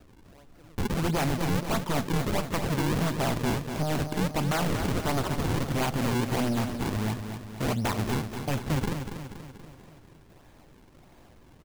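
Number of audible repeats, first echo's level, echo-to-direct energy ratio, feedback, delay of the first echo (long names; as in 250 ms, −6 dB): 6, −8.0 dB, −6.5 dB, 54%, 240 ms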